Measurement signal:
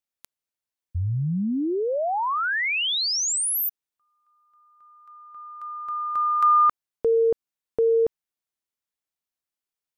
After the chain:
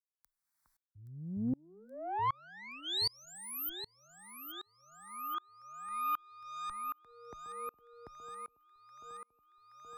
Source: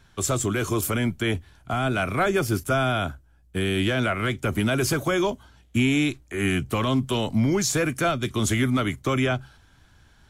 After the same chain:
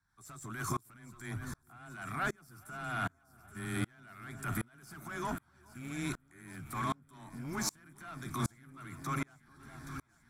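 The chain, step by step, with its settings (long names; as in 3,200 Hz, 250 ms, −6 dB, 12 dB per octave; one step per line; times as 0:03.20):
notch filter 6,600 Hz, Q 12
frequency shifter +16 Hz
tilt shelving filter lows −7.5 dB, about 1,100 Hz
transient designer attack −11 dB, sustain +4 dB
high-shelf EQ 2,300 Hz −10 dB
phaser with its sweep stopped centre 1,200 Hz, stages 4
in parallel at −1 dB: speech leveller within 4 dB
on the sum: tube saturation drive 19 dB, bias 0.35
downward compressor 4 to 1, threshold −42 dBFS
on a send: delay that swaps between a low-pass and a high-pass 412 ms, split 1,200 Hz, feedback 82%, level −10 dB
on the sum: tremolo with a ramp in dB swelling 1.3 Hz, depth 34 dB
level +10.5 dB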